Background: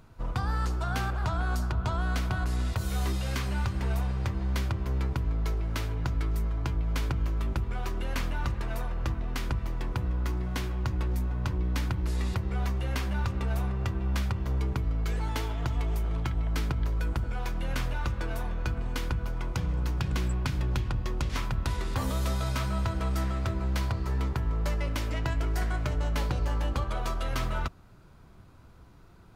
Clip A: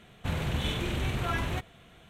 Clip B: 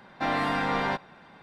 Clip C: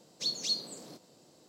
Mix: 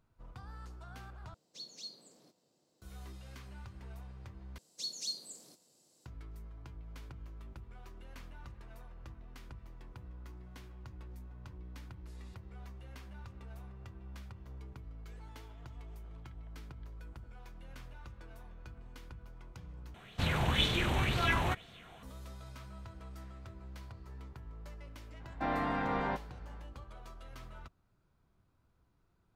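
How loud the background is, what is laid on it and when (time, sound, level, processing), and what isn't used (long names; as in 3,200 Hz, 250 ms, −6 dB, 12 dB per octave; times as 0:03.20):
background −19.5 dB
0:01.34: overwrite with C −15 dB
0:04.58: overwrite with C −13.5 dB + parametric band 10,000 Hz +15 dB 1.7 octaves
0:19.94: overwrite with A −1.5 dB + auto-filter bell 2 Hz 790–4,900 Hz +11 dB
0:25.20: mix in B −5 dB + low-pass filter 1,300 Hz 6 dB per octave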